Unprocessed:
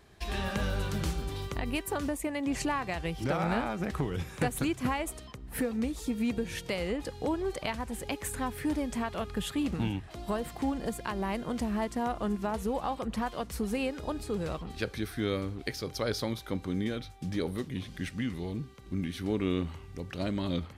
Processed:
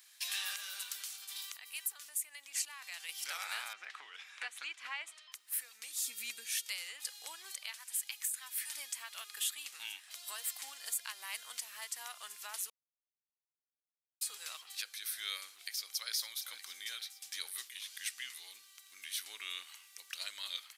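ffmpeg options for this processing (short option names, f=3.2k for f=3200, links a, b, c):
-filter_complex "[0:a]asettb=1/sr,asplit=3[a][b][c];[a]atrim=end=0.834[d];[b]atrim=start=0.83:end=3.09,asetpts=PTS-STARTPTS,afade=t=in:d=0.004:c=qsin,afade=t=out:st=2.256:d=0.004:c=qsin,acompressor=threshold=-33dB:ratio=6:attack=3.2:release=140:knee=1:detection=peak[e];[c]atrim=start=3.086[f];[d][e]acrossfade=d=0.004:c1=hsin:c2=qsin[g];[g][f]acrossfade=d=0.004:c1=qsin:c2=hsin,asettb=1/sr,asplit=3[h][i][j];[h]atrim=end=3.734[k];[i]atrim=start=3.73:end=5.32,asetpts=PTS-STARTPTS,afade=t=in:d=0.004:c=qsin,afade=t=out:st=1.586:d=0.004:c=qsin,highpass=160,lowpass=2.7k[l];[j]atrim=start=5.316[m];[k][l]acrossfade=d=0.004:c1=hsin:c2=qsin[n];[n][m]acrossfade=d=0.004:c1=qsin:c2=hsin,asplit=3[o][p][q];[o]afade=t=out:st=5.99:d=0.02[r];[p]asubboost=boost=8:cutoff=250,afade=t=in:st=5.99:d=0.02,afade=t=out:st=6.64:d=0.02[s];[q]afade=t=in:st=6.64:d=0.02[t];[r][s][t]amix=inputs=3:normalize=0,asettb=1/sr,asplit=3[u][v][w];[u]atrim=end=7.784[x];[v]atrim=start=7.78:end=8.76,asetpts=PTS-STARTPTS,afade=t=in:d=0.004:c=qsin,afade=t=out:st=0.976:d=0.004:c=qsin,highpass=930[y];[w]atrim=start=8.756[z];[x][y]acrossfade=d=0.004:c1=hsin:c2=qsin[aa];[aa][z]acrossfade=d=0.004:c1=qsin:c2=hsin,asplit=2[ab][ac];[ac]afade=t=in:st=15.31:d=0.01,afade=t=out:st=16.13:d=0.01,aecho=0:1:460|920|1380|1840|2300:0.188365|0.103601|0.0569804|0.0313392|0.0172366[ad];[ab][ad]amix=inputs=2:normalize=0,asplit=3[ae][af][ag];[ae]atrim=end=12.7,asetpts=PTS-STARTPTS,afade=t=out:st=12.696:d=0.004:c=hsin[ah];[af]atrim=start=12.7:end=14.21,asetpts=PTS-STARTPTS,volume=0[ai];[ag]atrim=start=14.21,asetpts=PTS-STARTPTS,afade=t=in:d=0.004:c=hsin[aj];[ah][ai][aj]concat=n=3:v=0:a=1,highpass=1.4k,aderivative,alimiter=level_in=9.5dB:limit=-24dB:level=0:latency=1:release=450,volume=-9.5dB,volume=10dB"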